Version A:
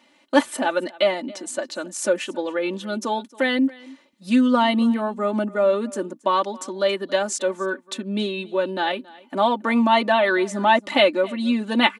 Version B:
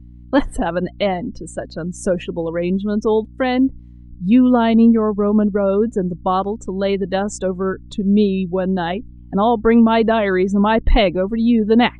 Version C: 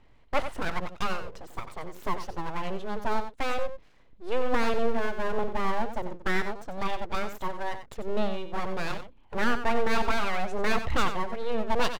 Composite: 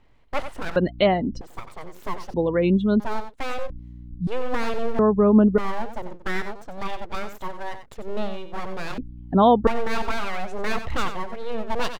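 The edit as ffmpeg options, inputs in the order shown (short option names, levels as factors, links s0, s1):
-filter_complex "[1:a]asplit=5[s0][s1][s2][s3][s4];[2:a]asplit=6[s5][s6][s7][s8][s9][s10];[s5]atrim=end=0.762[s11];[s0]atrim=start=0.758:end=1.412[s12];[s6]atrim=start=1.408:end=2.342[s13];[s1]atrim=start=2.338:end=3.002[s14];[s7]atrim=start=2.998:end=3.702[s15];[s2]atrim=start=3.698:end=4.272[s16];[s8]atrim=start=4.268:end=4.992[s17];[s3]atrim=start=4.988:end=5.582[s18];[s9]atrim=start=5.578:end=8.982[s19];[s4]atrim=start=8.978:end=9.672[s20];[s10]atrim=start=9.668[s21];[s11][s12]acrossfade=d=0.004:c1=hsin:c2=hsin[s22];[s22][s13]acrossfade=d=0.004:c1=hsin:c2=hsin[s23];[s23][s14]acrossfade=d=0.004:c1=hsin:c2=hsin[s24];[s24][s15]acrossfade=d=0.004:c1=hsin:c2=hsin[s25];[s25][s16]acrossfade=d=0.004:c1=hsin:c2=hsin[s26];[s26][s17]acrossfade=d=0.004:c1=hsin:c2=hsin[s27];[s27][s18]acrossfade=d=0.004:c1=hsin:c2=hsin[s28];[s28][s19]acrossfade=d=0.004:c1=hsin:c2=hsin[s29];[s29][s20]acrossfade=d=0.004:c1=hsin:c2=hsin[s30];[s30][s21]acrossfade=d=0.004:c1=hsin:c2=hsin"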